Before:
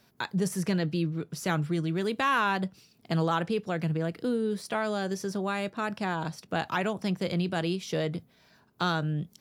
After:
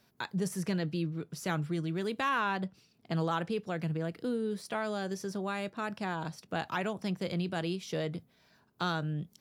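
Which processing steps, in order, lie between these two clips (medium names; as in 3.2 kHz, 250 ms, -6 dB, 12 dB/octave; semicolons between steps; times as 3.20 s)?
2.29–3.17 s: treble shelf 6.4 kHz -7.5 dB; trim -4.5 dB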